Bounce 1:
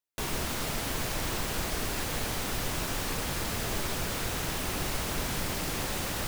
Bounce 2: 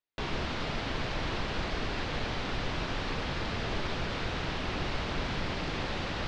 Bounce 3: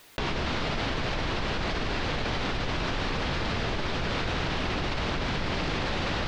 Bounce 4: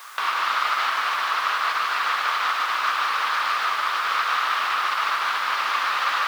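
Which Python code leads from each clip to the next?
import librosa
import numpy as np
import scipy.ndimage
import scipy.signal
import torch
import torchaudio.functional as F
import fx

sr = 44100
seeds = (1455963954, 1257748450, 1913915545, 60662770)

y1 = scipy.signal.sosfilt(scipy.signal.butter(4, 4400.0, 'lowpass', fs=sr, output='sos'), x)
y2 = fx.env_flatten(y1, sr, amount_pct=100)
y3 = fx.dmg_noise_colour(y2, sr, seeds[0], colour='pink', level_db=-46.0)
y3 = fx.highpass_res(y3, sr, hz=1200.0, q=4.9)
y3 = y3 + 10.0 ** (-4.5 / 20.0) * np.pad(y3, (int(148 * sr / 1000.0), 0))[:len(y3)]
y3 = y3 * librosa.db_to_amplitude(2.5)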